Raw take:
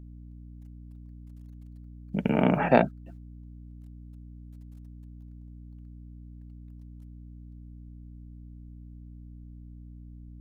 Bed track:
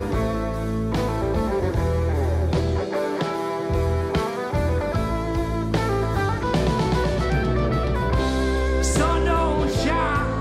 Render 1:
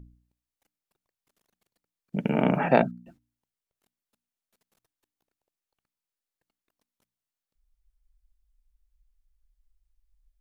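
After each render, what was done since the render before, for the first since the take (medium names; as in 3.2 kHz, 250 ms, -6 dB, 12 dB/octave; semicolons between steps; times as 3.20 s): de-hum 60 Hz, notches 5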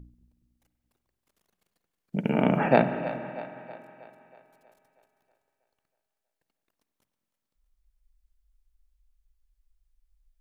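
two-band feedback delay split 400 Hz, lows 211 ms, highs 320 ms, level -13.5 dB; spring tank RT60 2.6 s, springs 46 ms, chirp 30 ms, DRR 9.5 dB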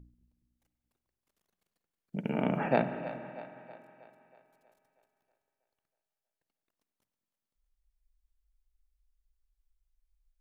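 trim -7 dB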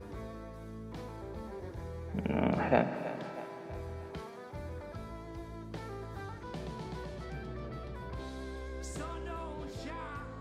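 add bed track -20.5 dB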